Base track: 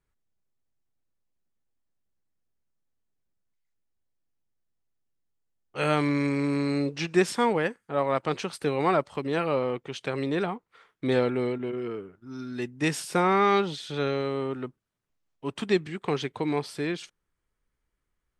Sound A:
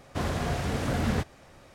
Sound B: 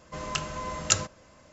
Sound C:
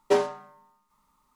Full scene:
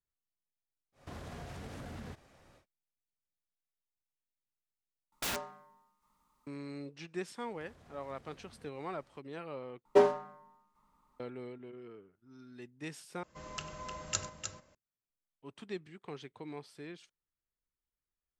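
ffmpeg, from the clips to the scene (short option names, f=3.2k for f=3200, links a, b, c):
-filter_complex "[1:a]asplit=2[a][b];[3:a]asplit=2[c][d];[0:a]volume=-17dB[e];[a]acompressor=threshold=-32dB:ratio=6:attack=3.2:release=140:knee=1:detection=peak[f];[c]aeval=exprs='(mod(15.8*val(0)+1,2)-1)/15.8':c=same[g];[b]acompressor=threshold=-42dB:ratio=6:attack=3.2:release=140:knee=1:detection=peak[h];[d]highshelf=f=2.5k:g=-10.5[i];[2:a]aecho=1:1:96|305:0.141|0.447[j];[e]asplit=4[k][l][m][n];[k]atrim=end=5.124[o];[g]atrim=end=1.35,asetpts=PTS-STARTPTS,volume=-6dB[p];[l]atrim=start=6.466:end=9.854[q];[i]atrim=end=1.35,asetpts=PTS-STARTPTS,volume=-1dB[r];[m]atrim=start=11.196:end=13.234[s];[j]atrim=end=1.52,asetpts=PTS-STARTPTS,volume=-11.5dB[t];[n]atrim=start=14.746[u];[f]atrim=end=1.74,asetpts=PTS-STARTPTS,volume=-9.5dB,afade=t=in:d=0.1,afade=t=out:st=1.64:d=0.1,adelay=920[v];[h]atrim=end=1.74,asetpts=PTS-STARTPTS,volume=-15.5dB,afade=t=in:d=0.004:c=hsin,afade=t=out:st=1.736:d=0.004:c=hsin,adelay=328986S[w];[o][p]acrossfade=d=0.004:c1=hsin:c2=hsin[x];[x][q]acrossfade=d=0.004:c1=hsin:c2=hsin[y];[y][r]acrossfade=d=0.004:c1=hsin:c2=hsin[z];[z][s]acrossfade=d=0.004:c1=hsin:c2=hsin[aa];[aa][t]acrossfade=d=0.004:c1=hsin:c2=hsin[ab];[ab][u]acrossfade=d=0.004:c1=hsin:c2=hsin[ac];[ac][v][w]amix=inputs=3:normalize=0"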